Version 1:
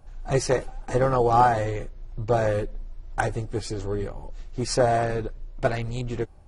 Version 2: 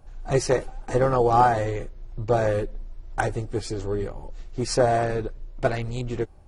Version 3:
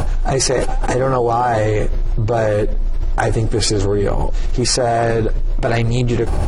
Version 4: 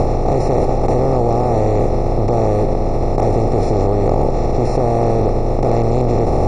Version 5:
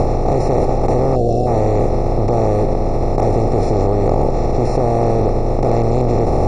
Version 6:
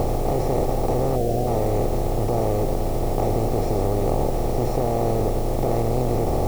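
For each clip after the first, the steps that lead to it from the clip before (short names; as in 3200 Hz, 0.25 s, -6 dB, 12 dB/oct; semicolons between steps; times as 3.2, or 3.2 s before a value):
bell 380 Hz +2 dB
fast leveller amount 100%; gain -1 dB
per-bin compression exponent 0.2; running mean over 28 samples; gain -4.5 dB
notch 3100 Hz, Q 7.5; spectral gain 1.16–1.47, 760–2600 Hz -20 dB
reverse echo 0.107 s -16 dB; requantised 6-bit, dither triangular; gain -7 dB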